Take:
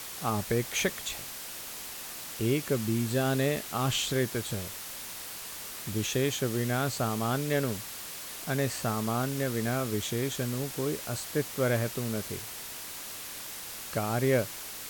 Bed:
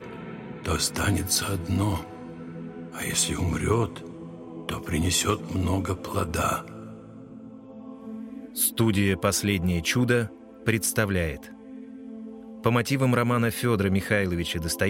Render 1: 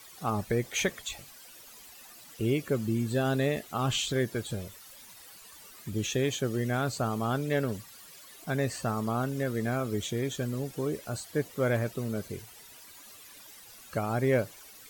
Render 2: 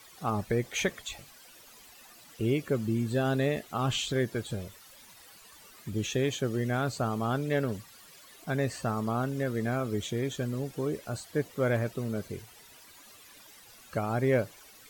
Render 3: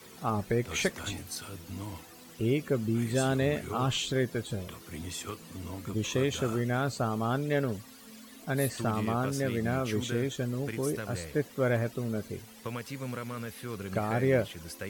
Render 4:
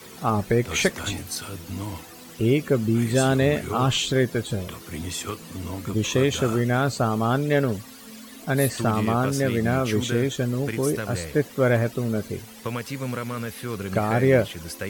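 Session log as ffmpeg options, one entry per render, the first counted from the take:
ffmpeg -i in.wav -af "afftdn=noise_reduction=14:noise_floor=-41" out.wav
ffmpeg -i in.wav -af "highshelf=frequency=5600:gain=-5" out.wav
ffmpeg -i in.wav -i bed.wav -filter_complex "[1:a]volume=-15dB[link_01];[0:a][link_01]amix=inputs=2:normalize=0" out.wav
ffmpeg -i in.wav -af "volume=7.5dB" out.wav

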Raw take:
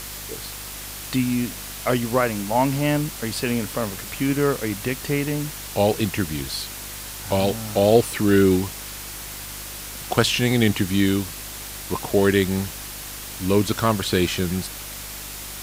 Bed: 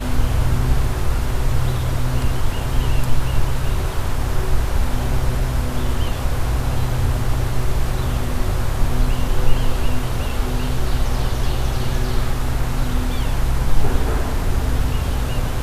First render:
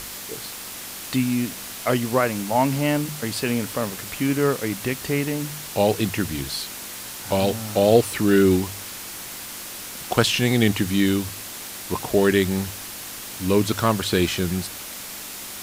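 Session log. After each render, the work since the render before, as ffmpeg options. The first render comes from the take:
ffmpeg -i in.wav -af "bandreject=frequency=50:width_type=h:width=4,bandreject=frequency=100:width_type=h:width=4,bandreject=frequency=150:width_type=h:width=4" out.wav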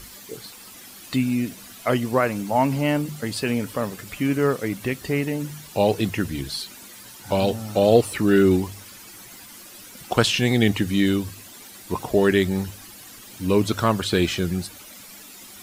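ffmpeg -i in.wav -af "afftdn=noise_reduction=12:noise_floor=-36" out.wav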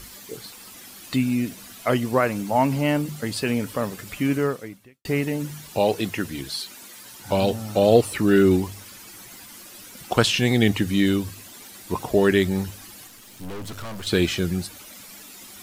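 ffmpeg -i in.wav -filter_complex "[0:a]asettb=1/sr,asplit=3[link_01][link_02][link_03];[link_01]atrim=end=5.794[link_04];[link_02]atrim=start=5.79:end=7.12,asetpts=PTS-STARTPTS,afade=type=in:duration=0.004:curve=qsin,afade=type=out:start_time=1.326:duration=0.004:curve=qsin,lowshelf=frequency=160:gain=-10[link_05];[link_03]atrim=start=7.116[link_06];[link_04][link_05]acrossfade=duration=0.004:curve1=hsin:curve2=qsin[link_07];[link_07][link_06]acrossfade=duration=0.004:curve1=qsin:curve2=hsin,asettb=1/sr,asplit=3[link_08][link_09][link_10];[link_08]atrim=end=13.074[link_11];[link_09]atrim=start=13.07:end=14.07,asetpts=PTS-STARTPTS,afade=type=in:duration=0.004:curve=qsin,afade=type=out:start_time=0.996:duration=0.004:curve=qsin,aeval=exprs='(tanh(44.7*val(0)+0.7)-tanh(0.7))/44.7':channel_layout=same[link_12];[link_10]atrim=start=14.066[link_13];[link_11][link_12]acrossfade=duration=0.004:curve1=hsin:curve2=qsin[link_14];[link_14][link_13]acrossfade=duration=0.004:curve1=qsin:curve2=hsin,asplit=2[link_15][link_16];[link_15]atrim=end=5.05,asetpts=PTS-STARTPTS,afade=type=out:start_time=4.35:duration=0.7:curve=qua[link_17];[link_16]atrim=start=5.05,asetpts=PTS-STARTPTS,afade=type=in:duration=0.004:curve=hsin[link_18];[link_17][link_18]concat=n=2:v=0:a=1" out.wav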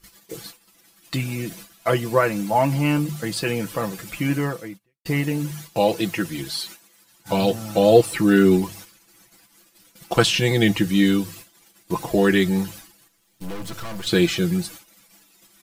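ffmpeg -i in.wav -af "agate=range=-20dB:threshold=-40dB:ratio=16:detection=peak,aecho=1:1:6:0.74" out.wav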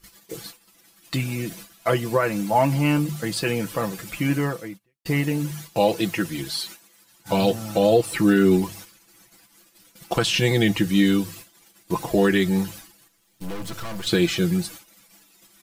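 ffmpeg -i in.wav -af "alimiter=limit=-8dB:level=0:latency=1:release=172" out.wav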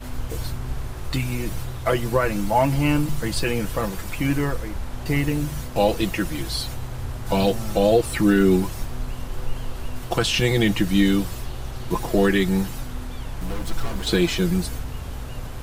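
ffmpeg -i in.wav -i bed.wav -filter_complex "[1:a]volume=-11.5dB[link_01];[0:a][link_01]amix=inputs=2:normalize=0" out.wav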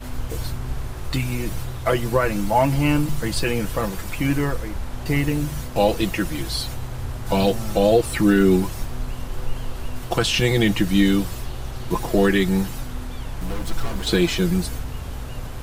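ffmpeg -i in.wav -af "volume=1dB" out.wav

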